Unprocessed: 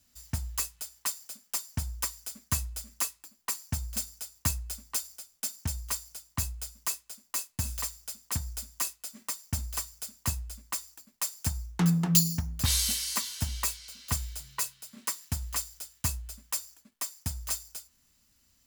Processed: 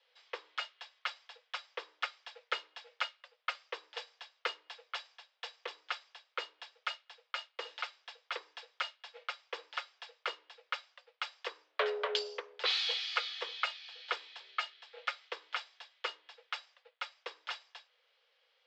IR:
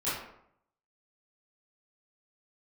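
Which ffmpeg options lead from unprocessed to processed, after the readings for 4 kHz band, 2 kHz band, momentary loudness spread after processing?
-0.5 dB, +4.5 dB, 13 LU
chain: -af "highpass=f=260:t=q:w=0.5412,highpass=f=260:t=q:w=1.307,lowpass=f=3.4k:t=q:w=0.5176,lowpass=f=3.4k:t=q:w=0.7071,lowpass=f=3.4k:t=q:w=1.932,afreqshift=250,crystalizer=i=2:c=0,volume=2.5dB"

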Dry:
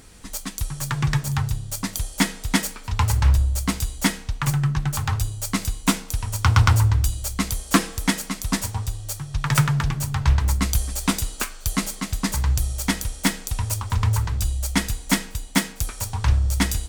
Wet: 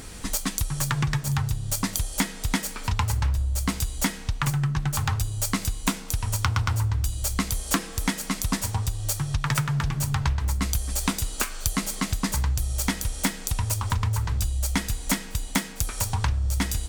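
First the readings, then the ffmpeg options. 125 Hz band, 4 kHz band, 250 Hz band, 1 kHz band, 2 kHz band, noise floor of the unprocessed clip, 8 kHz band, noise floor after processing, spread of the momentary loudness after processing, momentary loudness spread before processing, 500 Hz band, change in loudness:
-4.0 dB, -3.0 dB, -4.0 dB, -3.0 dB, -3.5 dB, -40 dBFS, -1.0 dB, -38 dBFS, 3 LU, 8 LU, -3.5 dB, -3.5 dB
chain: -af "acompressor=threshold=-30dB:ratio=6,volume=7.5dB"

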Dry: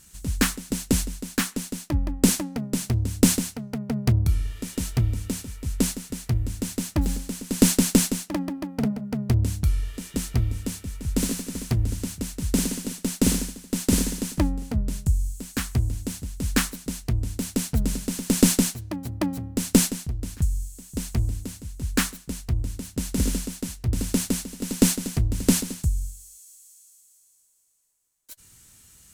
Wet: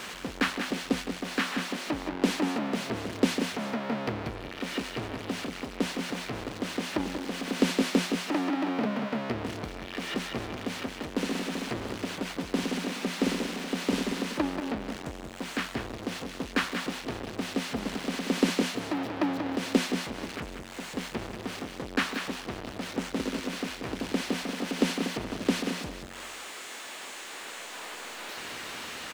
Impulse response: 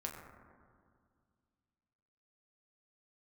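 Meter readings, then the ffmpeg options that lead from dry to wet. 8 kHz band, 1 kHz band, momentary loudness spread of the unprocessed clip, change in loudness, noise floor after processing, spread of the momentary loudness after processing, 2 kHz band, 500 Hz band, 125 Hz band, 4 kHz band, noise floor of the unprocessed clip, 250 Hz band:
-13.5 dB, +5.0 dB, 11 LU, -6.0 dB, -42 dBFS, 10 LU, +3.0 dB, +0.5 dB, -14.5 dB, -1.0 dB, -55 dBFS, -4.5 dB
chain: -filter_complex "[0:a]aeval=exprs='val(0)+0.5*0.0891*sgn(val(0))':c=same,acrossover=split=240 4000:gain=0.0631 1 0.0708[a][b][c];[a][b][c]amix=inputs=3:normalize=0,aecho=1:1:185:0.422,volume=-3dB"

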